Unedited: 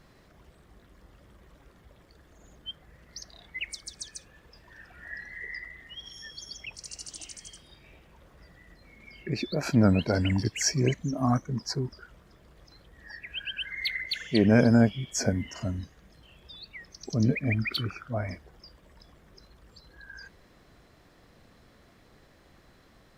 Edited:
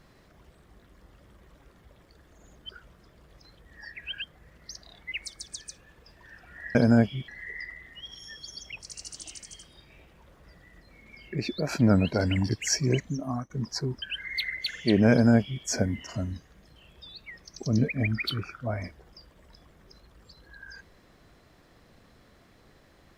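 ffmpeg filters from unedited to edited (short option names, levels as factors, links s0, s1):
-filter_complex "[0:a]asplit=7[s0][s1][s2][s3][s4][s5][s6];[s0]atrim=end=2.692[s7];[s1]atrim=start=11.958:end=13.492[s8];[s2]atrim=start=2.688:end=5.222[s9];[s3]atrim=start=14.578:end=15.112[s10];[s4]atrim=start=5.218:end=11.44,asetpts=PTS-STARTPTS,afade=t=out:st=5.812:d=0.41:silence=0.105925[s11];[s5]atrim=start=11.44:end=11.962,asetpts=PTS-STARTPTS,afade=t=in:d=0.004:c=hsin:silence=0.105925[s12];[s6]atrim=start=13.488[s13];[s7][s8]acrossfade=d=0.004:c1=hsin:c2=hsin[s14];[s14][s9]acrossfade=d=0.004:c1=hsin:c2=hsin[s15];[s15][s10]acrossfade=d=0.004:c1=hsin:c2=hsin[s16];[s11][s12]concat=n=2:v=0:a=1[s17];[s16][s17]acrossfade=d=0.004:c1=hsin:c2=hsin[s18];[s18][s13]acrossfade=d=0.004:c1=hsin:c2=hsin"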